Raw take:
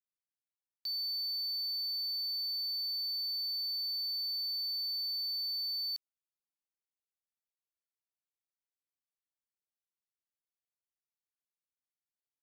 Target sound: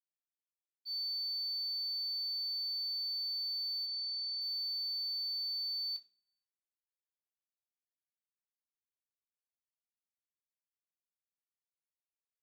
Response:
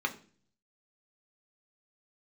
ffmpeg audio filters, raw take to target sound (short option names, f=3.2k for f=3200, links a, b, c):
-filter_complex "[0:a]agate=range=-33dB:threshold=-29dB:ratio=3:detection=peak,asplit=3[a][b][c];[a]afade=t=out:st=3.85:d=0.02[d];[b]lowpass=6.1k,afade=t=in:st=3.85:d=0.02,afade=t=out:st=4.4:d=0.02[e];[c]afade=t=in:st=4.4:d=0.02[f];[d][e][f]amix=inputs=3:normalize=0[g];[1:a]atrim=start_sample=2205[h];[g][h]afir=irnorm=-1:irlink=0"